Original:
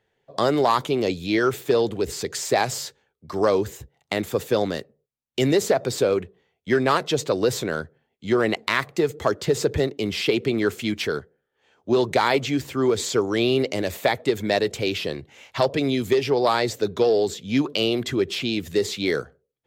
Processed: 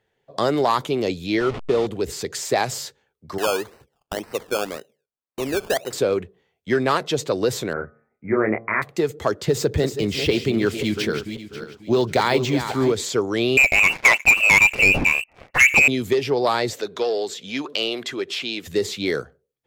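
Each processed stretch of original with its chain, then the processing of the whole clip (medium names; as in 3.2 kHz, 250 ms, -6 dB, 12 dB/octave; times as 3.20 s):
1.40–1.87 s: send-on-delta sampling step -24.5 dBFS + low-pass 3.7 kHz + band-stop 1.6 kHz, Q 7
3.38–5.93 s: band-pass filter 970 Hz, Q 0.63 + decimation with a swept rate 18×, swing 60% 1.9 Hz
7.73–8.82 s: Chebyshev low-pass 2.4 kHz, order 8 + doubling 28 ms -4.5 dB + de-hum 114.2 Hz, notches 13
9.48–12.92 s: backward echo that repeats 270 ms, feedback 47%, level -8.5 dB + tone controls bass +4 dB, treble +4 dB + decimation joined by straight lines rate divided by 2×
13.57–15.88 s: frequency inversion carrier 2.8 kHz + waveshaping leveller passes 3
16.73–18.67 s: frequency weighting A + upward compressor, threshold -28 dBFS
whole clip: none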